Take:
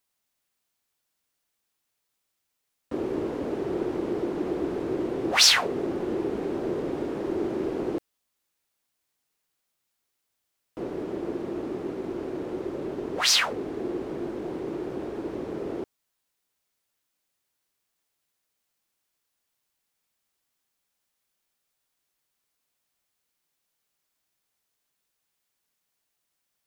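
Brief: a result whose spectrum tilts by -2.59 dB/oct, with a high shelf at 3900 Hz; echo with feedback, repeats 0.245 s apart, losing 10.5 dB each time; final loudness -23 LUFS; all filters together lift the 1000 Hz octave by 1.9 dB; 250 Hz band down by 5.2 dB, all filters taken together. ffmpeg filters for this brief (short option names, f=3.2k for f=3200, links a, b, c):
-af "equalizer=f=250:t=o:g=-8.5,equalizer=f=1k:t=o:g=3.5,highshelf=f=3.9k:g=-6.5,aecho=1:1:245|490|735:0.299|0.0896|0.0269,volume=7dB"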